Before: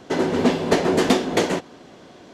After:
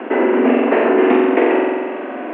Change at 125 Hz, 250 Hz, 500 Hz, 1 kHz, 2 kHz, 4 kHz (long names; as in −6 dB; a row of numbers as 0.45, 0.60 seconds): below −10 dB, +6.5 dB, +7.5 dB, +6.5 dB, +6.5 dB, −7.0 dB